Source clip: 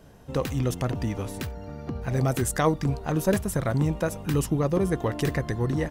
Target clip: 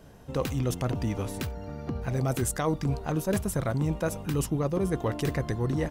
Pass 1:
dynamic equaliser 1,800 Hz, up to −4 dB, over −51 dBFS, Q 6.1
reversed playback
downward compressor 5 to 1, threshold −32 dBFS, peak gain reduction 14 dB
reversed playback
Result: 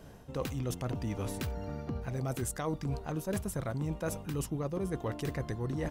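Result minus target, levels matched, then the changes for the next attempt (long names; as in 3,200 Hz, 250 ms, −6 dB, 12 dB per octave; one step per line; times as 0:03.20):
downward compressor: peak gain reduction +7 dB
change: downward compressor 5 to 1, threshold −23 dBFS, peak gain reduction 7 dB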